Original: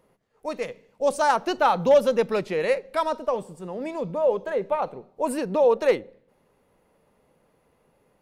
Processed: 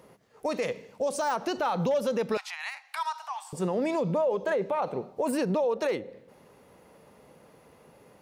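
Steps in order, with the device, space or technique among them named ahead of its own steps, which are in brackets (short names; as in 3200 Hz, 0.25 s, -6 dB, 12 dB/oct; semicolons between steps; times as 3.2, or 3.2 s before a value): broadcast voice chain (HPF 71 Hz; de-esser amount 65%; compressor 3:1, threshold -31 dBFS, peak gain reduction 13.5 dB; bell 5600 Hz +3.5 dB 0.77 oct; limiter -29 dBFS, peak gain reduction 9.5 dB); 2.37–3.53 steep high-pass 740 Hz 96 dB/oct; gain +9 dB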